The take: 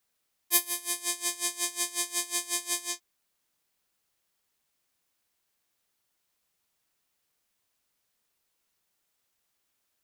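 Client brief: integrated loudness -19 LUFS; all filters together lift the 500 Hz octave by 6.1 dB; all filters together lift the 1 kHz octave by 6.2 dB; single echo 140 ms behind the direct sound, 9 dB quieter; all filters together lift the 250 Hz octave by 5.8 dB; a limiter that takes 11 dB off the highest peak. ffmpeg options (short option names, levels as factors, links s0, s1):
-af "equalizer=f=250:t=o:g=4,equalizer=f=500:t=o:g=7,equalizer=f=1000:t=o:g=5,alimiter=limit=0.2:level=0:latency=1,aecho=1:1:140:0.355,volume=3.98"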